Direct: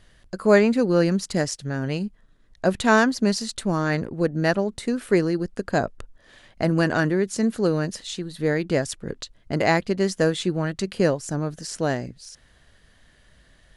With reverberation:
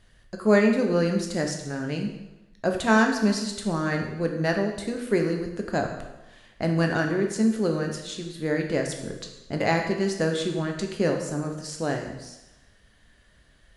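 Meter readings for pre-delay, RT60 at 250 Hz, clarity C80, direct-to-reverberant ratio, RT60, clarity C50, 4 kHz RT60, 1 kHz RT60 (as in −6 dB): 5 ms, 1.0 s, 8.0 dB, 2.5 dB, 1.0 s, 6.0 dB, 0.95 s, 1.0 s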